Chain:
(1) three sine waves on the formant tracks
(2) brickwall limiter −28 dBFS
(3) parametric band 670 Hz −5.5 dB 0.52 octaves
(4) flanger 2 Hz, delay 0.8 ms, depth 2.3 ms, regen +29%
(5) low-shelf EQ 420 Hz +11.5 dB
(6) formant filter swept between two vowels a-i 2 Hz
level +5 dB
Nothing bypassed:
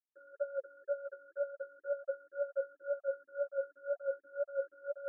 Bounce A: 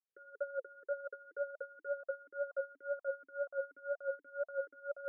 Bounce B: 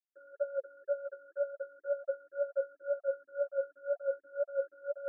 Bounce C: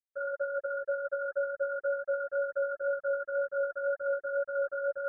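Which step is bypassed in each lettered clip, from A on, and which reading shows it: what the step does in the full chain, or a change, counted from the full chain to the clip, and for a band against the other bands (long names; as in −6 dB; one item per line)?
1, change in integrated loudness −2.0 LU
3, change in integrated loudness +2.5 LU
6, change in crest factor −4.5 dB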